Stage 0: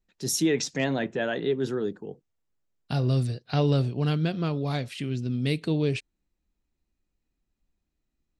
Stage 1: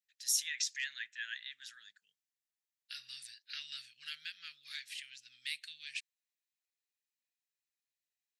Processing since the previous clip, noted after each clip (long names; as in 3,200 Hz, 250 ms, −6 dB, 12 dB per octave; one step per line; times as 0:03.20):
elliptic high-pass filter 1,700 Hz, stop band 50 dB
high-shelf EQ 5,000 Hz +4.5 dB
level −5.5 dB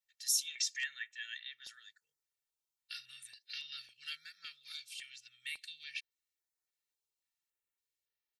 comb filter 2.2 ms, depth 93%
notch on a step sequencer 3.6 Hz 270–7,900 Hz
level −2 dB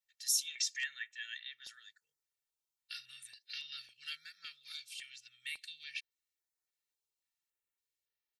no processing that can be heard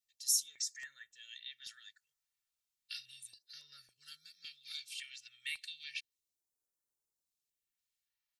all-pass phaser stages 2, 0.33 Hz, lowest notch 330–2,800 Hz
level +1 dB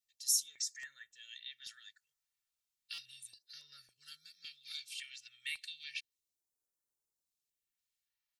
buffer that repeats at 0:02.93, samples 256, times 8